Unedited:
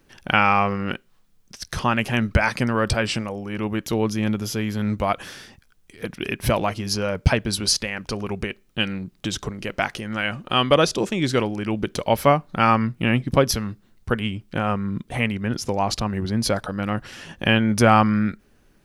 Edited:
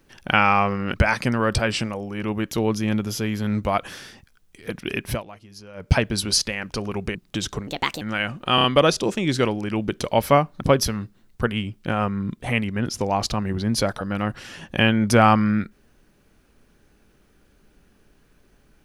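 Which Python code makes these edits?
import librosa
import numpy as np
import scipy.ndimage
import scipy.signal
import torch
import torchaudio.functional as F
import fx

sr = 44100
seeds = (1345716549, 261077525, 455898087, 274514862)

y = fx.edit(x, sr, fx.cut(start_s=0.94, length_s=1.35),
    fx.fade_down_up(start_s=6.39, length_s=0.89, db=-18.5, fade_s=0.19),
    fx.cut(start_s=8.5, length_s=0.55),
    fx.speed_span(start_s=9.57, length_s=0.48, speed=1.4),
    fx.stutter(start_s=10.59, slice_s=0.03, count=4),
    fx.cut(start_s=12.56, length_s=0.73), tone=tone)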